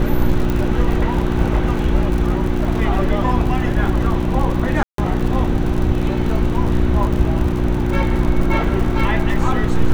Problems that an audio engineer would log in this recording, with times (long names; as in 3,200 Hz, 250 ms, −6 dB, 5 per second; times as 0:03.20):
surface crackle 79 per second −24 dBFS
mains hum 60 Hz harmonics 6 −21 dBFS
0:00.50: click −9 dBFS
0:04.83–0:04.98: drop-out 153 ms